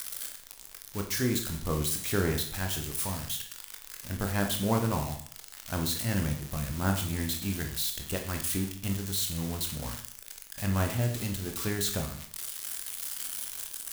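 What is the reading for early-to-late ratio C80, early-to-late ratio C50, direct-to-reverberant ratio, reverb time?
11.5 dB, 8.0 dB, 3.0 dB, 0.60 s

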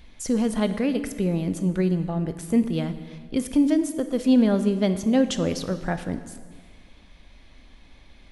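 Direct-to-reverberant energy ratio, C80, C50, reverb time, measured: 10.0 dB, 12.5 dB, 11.5 dB, 1.6 s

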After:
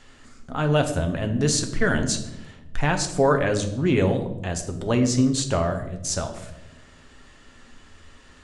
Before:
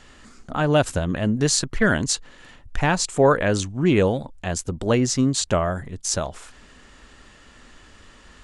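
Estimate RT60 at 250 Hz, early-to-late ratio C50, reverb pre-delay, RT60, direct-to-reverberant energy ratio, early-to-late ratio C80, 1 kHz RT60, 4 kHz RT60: 1.5 s, 10.5 dB, 7 ms, 1.0 s, 5.0 dB, 13.0 dB, 0.80 s, 0.65 s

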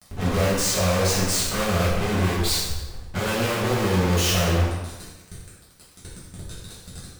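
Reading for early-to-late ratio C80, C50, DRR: 3.0 dB, 0.0 dB, -10.0 dB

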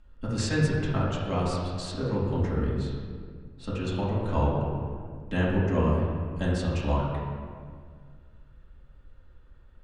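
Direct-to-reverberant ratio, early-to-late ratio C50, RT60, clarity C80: -8.5 dB, -0.5 dB, 1.9 s, 2.0 dB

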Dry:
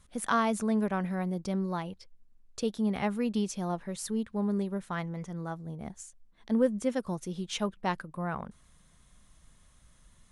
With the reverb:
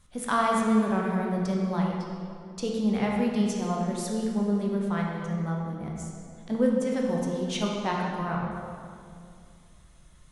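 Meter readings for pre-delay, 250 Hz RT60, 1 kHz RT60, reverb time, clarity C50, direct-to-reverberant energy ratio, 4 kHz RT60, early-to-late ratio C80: 11 ms, 2.9 s, 2.2 s, 2.4 s, 0.5 dB, -2.0 dB, 1.7 s, 2.0 dB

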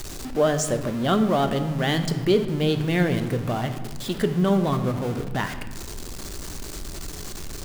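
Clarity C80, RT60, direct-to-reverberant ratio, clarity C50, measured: 11.5 dB, 1.6 s, 7.5 dB, 10.5 dB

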